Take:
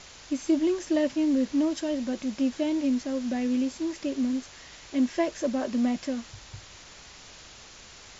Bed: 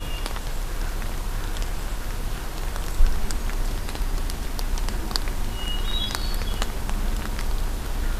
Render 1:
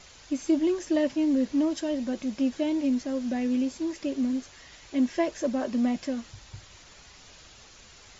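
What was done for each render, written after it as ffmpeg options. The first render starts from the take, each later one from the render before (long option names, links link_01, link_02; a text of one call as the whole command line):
ffmpeg -i in.wav -af "afftdn=noise_reduction=6:noise_floor=-49" out.wav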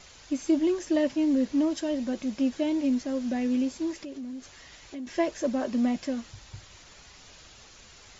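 ffmpeg -i in.wav -filter_complex "[0:a]asettb=1/sr,asplit=3[link_01][link_02][link_03];[link_01]atrim=end=3.974[link_04];[link_02]atrim=start=3.97:end=5.07,asetpts=PTS-STARTPTS,afade=type=in:duration=0.004:curve=qsin,afade=type=out:start_time=1.096:duration=0.004:curve=qsin,acompressor=threshold=-37dB:ratio=4:attack=3.2:release=140:knee=1:detection=peak[link_05];[link_03]atrim=start=5.066[link_06];[link_04][link_05]acrossfade=duration=0.004:curve1=hsin:curve2=qsin[link_07];[link_07][link_06]acrossfade=duration=0.004:curve1=qsin:curve2=hsin" out.wav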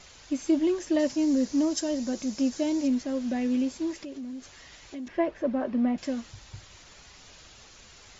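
ffmpeg -i in.wav -filter_complex "[0:a]asettb=1/sr,asplit=3[link_01][link_02][link_03];[link_01]atrim=end=0.994[link_04];[link_02]atrim=start=0.99:end=2.88,asetpts=PTS-STARTPTS,afade=type=in:duration=0.004:curve=qsin,afade=type=out:start_time=1.886:duration=0.004:curve=qsin,highshelf=frequency=4200:width_type=q:width=1.5:gain=7.5[link_05];[link_03]atrim=start=2.876[link_06];[link_04][link_05]acrossfade=duration=0.004:curve1=hsin:curve2=qsin[link_07];[link_07][link_06]acrossfade=duration=0.004:curve1=qsin:curve2=hsin,asettb=1/sr,asplit=3[link_08][link_09][link_10];[link_08]atrim=end=5.084[link_11];[link_09]atrim=start=5.08:end=5.98,asetpts=PTS-STARTPTS,afade=type=in:duration=0.004:curve=qsin,afade=type=out:start_time=0.896:duration=0.004:curve=qsin,lowpass=2100[link_12];[link_10]atrim=start=5.976[link_13];[link_11][link_12]acrossfade=duration=0.004:curve1=hsin:curve2=qsin[link_14];[link_14][link_13]acrossfade=duration=0.004:curve1=qsin:curve2=hsin" out.wav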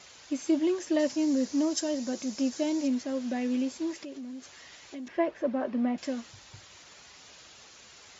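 ffmpeg -i in.wav -af "highpass=66,lowshelf=frequency=160:gain=-10" out.wav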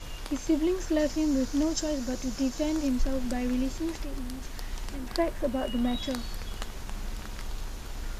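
ffmpeg -i in.wav -i bed.wav -filter_complex "[1:a]volume=-10.5dB[link_01];[0:a][link_01]amix=inputs=2:normalize=0" out.wav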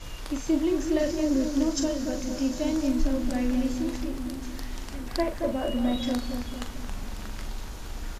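ffmpeg -i in.wav -filter_complex "[0:a]asplit=2[link_01][link_02];[link_02]adelay=41,volume=-7.5dB[link_03];[link_01][link_03]amix=inputs=2:normalize=0,asplit=2[link_04][link_05];[link_05]adelay=225,lowpass=frequency=980:poles=1,volume=-5.5dB,asplit=2[link_06][link_07];[link_07]adelay=225,lowpass=frequency=980:poles=1,volume=0.54,asplit=2[link_08][link_09];[link_09]adelay=225,lowpass=frequency=980:poles=1,volume=0.54,asplit=2[link_10][link_11];[link_11]adelay=225,lowpass=frequency=980:poles=1,volume=0.54,asplit=2[link_12][link_13];[link_13]adelay=225,lowpass=frequency=980:poles=1,volume=0.54,asplit=2[link_14][link_15];[link_15]adelay=225,lowpass=frequency=980:poles=1,volume=0.54,asplit=2[link_16][link_17];[link_17]adelay=225,lowpass=frequency=980:poles=1,volume=0.54[link_18];[link_04][link_06][link_08][link_10][link_12][link_14][link_16][link_18]amix=inputs=8:normalize=0" out.wav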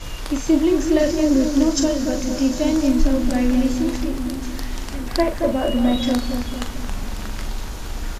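ffmpeg -i in.wav -af "volume=8dB" out.wav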